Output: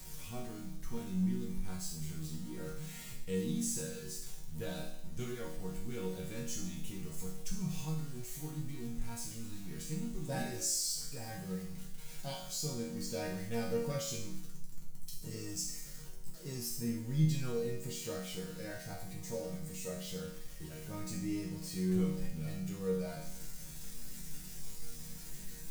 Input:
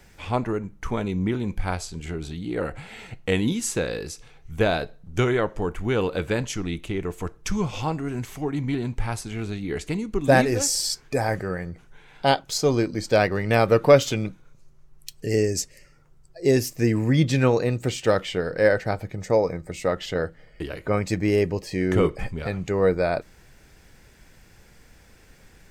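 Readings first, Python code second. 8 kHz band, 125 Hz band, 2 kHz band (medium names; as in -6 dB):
-7.5 dB, -12.5 dB, -21.0 dB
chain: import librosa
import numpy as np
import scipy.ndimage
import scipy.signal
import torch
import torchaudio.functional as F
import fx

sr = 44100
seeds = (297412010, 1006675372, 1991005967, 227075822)

y = x + 0.5 * 10.0 ** (-28.0 / 20.0) * np.sign(x)
y = fx.bass_treble(y, sr, bass_db=15, treble_db=15)
y = fx.resonator_bank(y, sr, root=51, chord='minor', decay_s=0.69)
y = y * librosa.db_to_amplitude(-4.5)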